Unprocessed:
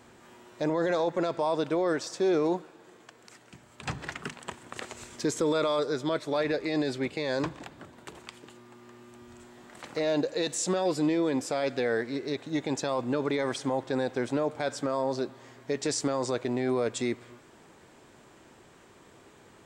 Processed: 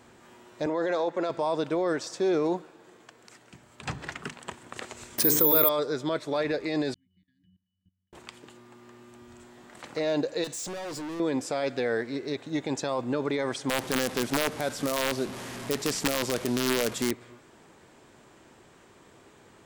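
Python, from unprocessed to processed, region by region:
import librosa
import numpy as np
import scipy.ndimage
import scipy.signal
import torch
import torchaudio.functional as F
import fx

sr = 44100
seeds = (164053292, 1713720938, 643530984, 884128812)

y = fx.chain(x, sr, fx.highpass(hz=250.0, slope=12),
    fx.high_shelf(hz=7700.0, db=-9.0), at=(0.66, 1.3))
y = fx.chain(y, sr, fx.hum_notches(base_hz=50, count=9),
    fx.resample_bad(factor=3, down='filtered', up='zero_stuff'),
    fx.env_flatten(amount_pct=70), at=(5.18, 5.69))
y = fx.chain(y, sr, fx.octave_resonator(note='F#', decay_s=0.57),
    fx.level_steps(step_db=20),
    fx.brickwall_bandstop(low_hz=330.0, high_hz=1600.0), at=(6.94, 8.13))
y = fx.chain(y, sr, fx.peak_eq(hz=6700.0, db=4.5, octaves=0.81),
    fx.clip_hard(threshold_db=-34.5), at=(10.44, 11.2))
y = fx.chain(y, sr, fx.delta_mod(bps=64000, step_db=-33.5),
    fx.peak_eq(hz=190.0, db=8.5, octaves=0.54),
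    fx.overflow_wrap(gain_db=18.0), at=(13.69, 17.11))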